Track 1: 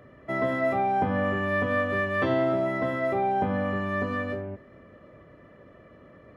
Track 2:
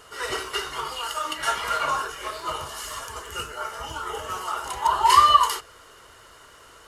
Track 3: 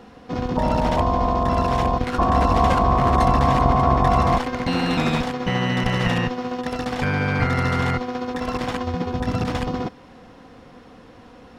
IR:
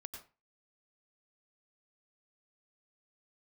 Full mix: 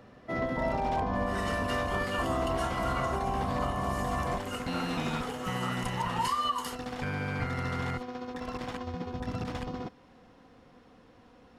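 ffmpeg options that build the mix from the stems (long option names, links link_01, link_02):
-filter_complex "[0:a]volume=-5dB[link_01];[1:a]adelay=1150,volume=-8dB[link_02];[2:a]volume=-11.5dB[link_03];[link_01][link_02][link_03]amix=inputs=3:normalize=0,alimiter=limit=-20.5dB:level=0:latency=1:release=310"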